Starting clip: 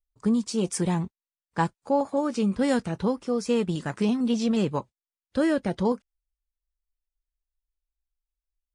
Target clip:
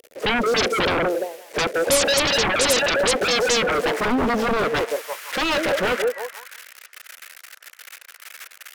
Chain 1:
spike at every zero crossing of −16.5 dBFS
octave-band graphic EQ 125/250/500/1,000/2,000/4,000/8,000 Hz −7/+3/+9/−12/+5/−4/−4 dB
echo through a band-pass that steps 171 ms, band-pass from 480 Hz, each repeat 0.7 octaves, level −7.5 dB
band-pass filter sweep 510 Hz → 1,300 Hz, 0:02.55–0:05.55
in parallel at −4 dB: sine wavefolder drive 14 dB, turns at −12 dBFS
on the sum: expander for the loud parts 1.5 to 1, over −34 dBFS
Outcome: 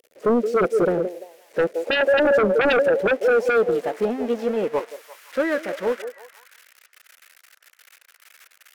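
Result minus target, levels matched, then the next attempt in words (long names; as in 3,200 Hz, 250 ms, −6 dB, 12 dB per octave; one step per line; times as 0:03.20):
sine wavefolder: distortion −15 dB
spike at every zero crossing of −16.5 dBFS
octave-band graphic EQ 125/250/500/1,000/2,000/4,000/8,000 Hz −7/+3/+9/−12/+5/−4/−4 dB
echo through a band-pass that steps 171 ms, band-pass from 480 Hz, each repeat 0.7 octaves, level −7.5 dB
band-pass filter sweep 510 Hz → 1,300 Hz, 0:02.55–0:05.55
in parallel at −4 dB: sine wavefolder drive 25 dB, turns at −12 dBFS
on the sum: expander for the loud parts 1.5 to 1, over −34 dBFS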